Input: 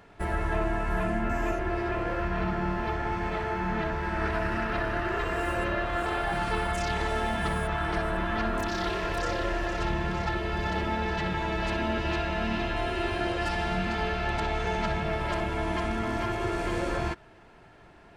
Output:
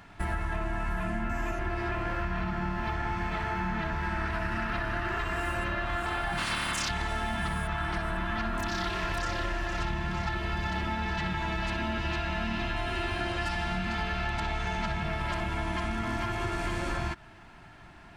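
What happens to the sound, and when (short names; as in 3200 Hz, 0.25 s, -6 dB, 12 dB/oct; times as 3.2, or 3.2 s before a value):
6.37–6.88 spectral limiter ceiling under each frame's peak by 21 dB
whole clip: bell 470 Hz -14 dB 0.7 oct; compressor, threshold -32 dBFS; gain +4.5 dB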